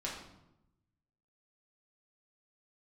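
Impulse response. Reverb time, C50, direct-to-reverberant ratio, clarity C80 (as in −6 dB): 0.90 s, 4.0 dB, −5.5 dB, 7.0 dB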